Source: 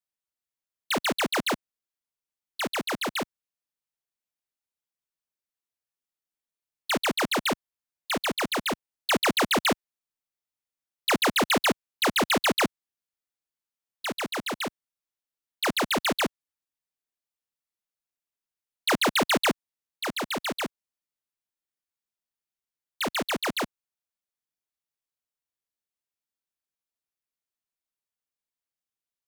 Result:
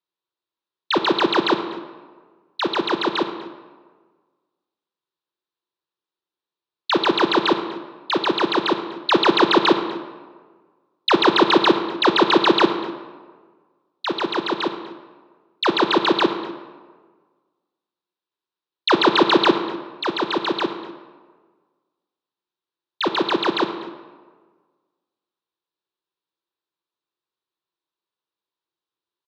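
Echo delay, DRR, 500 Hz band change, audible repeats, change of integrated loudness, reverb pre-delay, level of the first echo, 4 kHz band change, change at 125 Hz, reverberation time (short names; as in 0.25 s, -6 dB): 0.245 s, 7.5 dB, +10.0 dB, 1, +7.0 dB, 33 ms, -20.0 dB, +7.0 dB, +3.0 dB, 1.5 s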